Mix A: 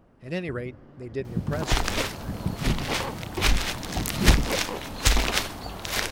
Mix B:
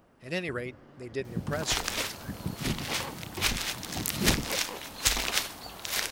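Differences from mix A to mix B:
second sound -6.0 dB; master: add tilt EQ +2 dB/octave

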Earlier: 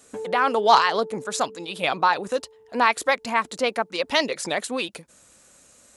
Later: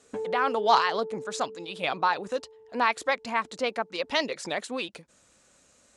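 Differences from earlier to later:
speech -5.0 dB; master: add low-pass 7.2 kHz 12 dB/octave

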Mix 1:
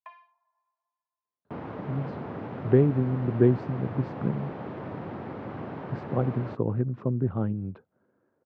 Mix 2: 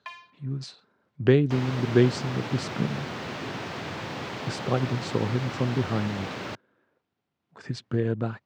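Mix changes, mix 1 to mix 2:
speech: entry -1.45 s; master: remove Bessel low-pass 830 Hz, order 2

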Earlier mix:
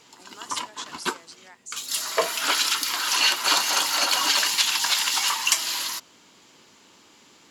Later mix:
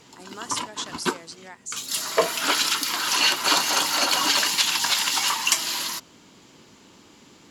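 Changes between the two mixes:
speech +5.0 dB; master: add bass shelf 370 Hz +11 dB

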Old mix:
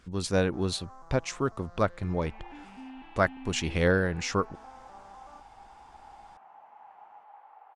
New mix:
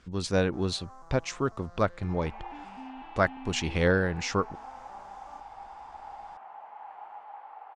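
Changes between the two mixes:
speech: add low-pass 6.4 kHz 12 dB/octave; second sound +7.0 dB; master: add treble shelf 7.4 kHz +5 dB

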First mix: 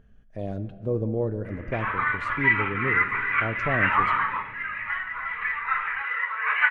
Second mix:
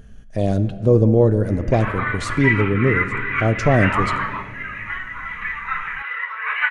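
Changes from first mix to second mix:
speech +11.5 dB; master: add tone controls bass +2 dB, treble +15 dB

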